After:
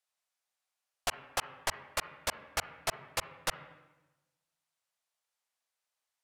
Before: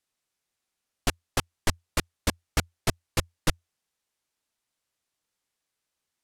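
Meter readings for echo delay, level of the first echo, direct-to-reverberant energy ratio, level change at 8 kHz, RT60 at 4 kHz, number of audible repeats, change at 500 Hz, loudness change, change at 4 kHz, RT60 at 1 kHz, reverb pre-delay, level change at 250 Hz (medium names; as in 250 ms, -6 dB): no echo, no echo, 11.5 dB, -4.5 dB, 0.95 s, no echo, -5.5 dB, -5.5 dB, -4.5 dB, 1.0 s, 38 ms, -19.0 dB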